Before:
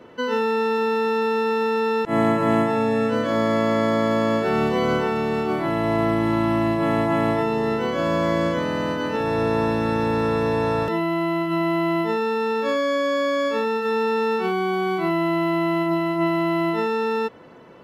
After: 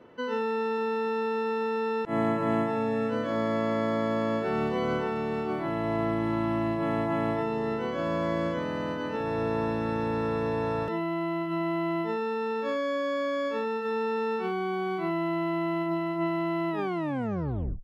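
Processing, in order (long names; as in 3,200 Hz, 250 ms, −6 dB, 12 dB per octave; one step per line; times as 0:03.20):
turntable brake at the end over 1.13 s
high-shelf EQ 4,500 Hz −8 dB
level −7 dB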